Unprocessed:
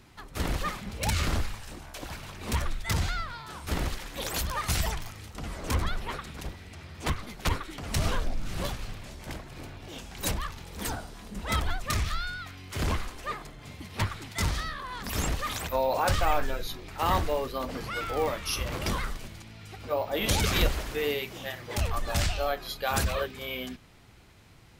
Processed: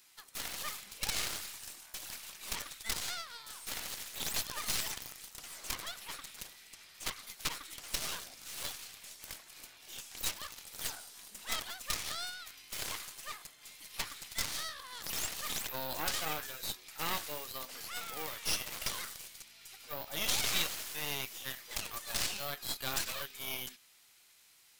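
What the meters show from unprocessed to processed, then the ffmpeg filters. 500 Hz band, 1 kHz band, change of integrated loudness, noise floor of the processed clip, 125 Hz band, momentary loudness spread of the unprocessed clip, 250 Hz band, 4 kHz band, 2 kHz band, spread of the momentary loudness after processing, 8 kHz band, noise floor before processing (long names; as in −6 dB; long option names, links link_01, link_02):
−16.0 dB, −12.0 dB, −6.5 dB, −62 dBFS, −21.5 dB, 14 LU, −15.5 dB, −2.0 dB, −6.5 dB, 12 LU, −0.5 dB, −49 dBFS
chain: -filter_complex "[0:a]aderivative,acrossover=split=5800[link_01][link_02];[link_02]acompressor=threshold=-44dB:ratio=4:attack=1:release=60[link_03];[link_01][link_03]amix=inputs=2:normalize=0,aeval=exprs='0.0794*(cos(1*acos(clip(val(0)/0.0794,-1,1)))-cos(1*PI/2))+0.0158*(cos(8*acos(clip(val(0)/0.0794,-1,1)))-cos(8*PI/2))':channel_layout=same,volume=3.5dB"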